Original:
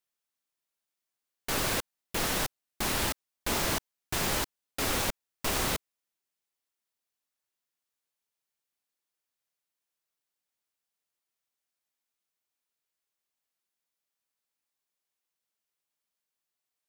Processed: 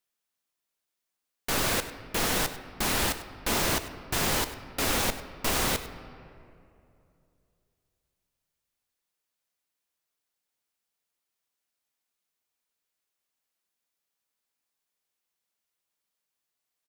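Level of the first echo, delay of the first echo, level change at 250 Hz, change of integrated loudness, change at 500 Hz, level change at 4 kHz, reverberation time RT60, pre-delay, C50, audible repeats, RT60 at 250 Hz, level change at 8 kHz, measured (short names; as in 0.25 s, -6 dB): -16.0 dB, 99 ms, +3.0 dB, +3.0 dB, +3.0 dB, +3.0 dB, 2.7 s, 4 ms, 11.0 dB, 1, 2.8 s, +2.5 dB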